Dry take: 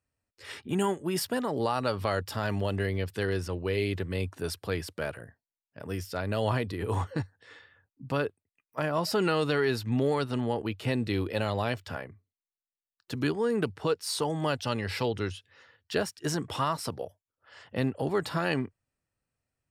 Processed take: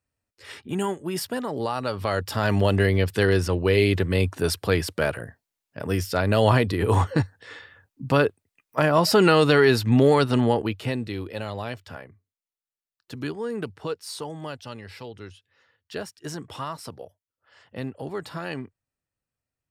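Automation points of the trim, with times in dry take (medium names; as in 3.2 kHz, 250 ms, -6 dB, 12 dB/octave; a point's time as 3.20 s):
1.90 s +1 dB
2.61 s +9.5 dB
10.47 s +9.5 dB
11.14 s -2.5 dB
13.93 s -2.5 dB
15.06 s -10 dB
16.05 s -4 dB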